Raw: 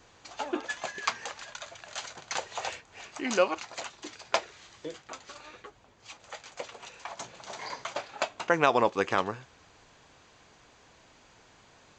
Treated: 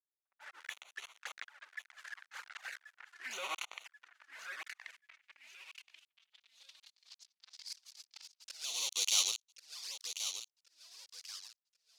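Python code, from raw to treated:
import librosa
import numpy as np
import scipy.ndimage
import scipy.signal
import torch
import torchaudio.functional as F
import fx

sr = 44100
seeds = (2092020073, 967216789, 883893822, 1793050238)

p1 = fx.fuzz(x, sr, gain_db=46.0, gate_db=-37.0)
p2 = fx.env_lowpass(p1, sr, base_hz=930.0, full_db=-17.0)
p3 = fx.auto_swell(p2, sr, attack_ms=636.0)
p4 = fx.riaa(p3, sr, side='recording')
p5 = p4 + fx.echo_feedback(p4, sr, ms=1083, feedback_pct=31, wet_db=-9.0, dry=0)
p6 = fx.filter_sweep_bandpass(p5, sr, from_hz=1600.0, to_hz=4900.0, start_s=4.43, end_s=7.38, q=3.1)
p7 = fx.env_flanger(p6, sr, rest_ms=5.3, full_db=-36.0)
y = p7 * 10.0 ** (-1.0 / 20.0)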